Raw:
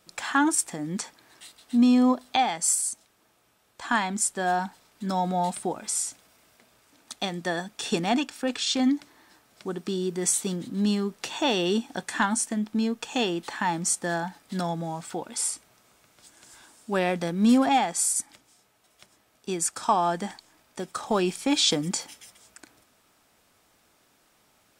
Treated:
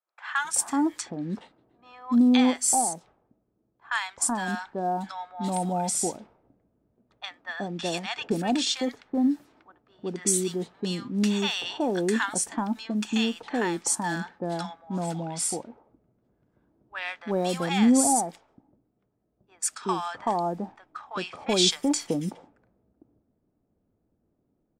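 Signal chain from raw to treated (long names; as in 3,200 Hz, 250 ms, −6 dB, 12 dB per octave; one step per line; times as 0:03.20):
multiband delay without the direct sound highs, lows 380 ms, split 980 Hz
low-pass that shuts in the quiet parts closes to 320 Hz, open at −25 dBFS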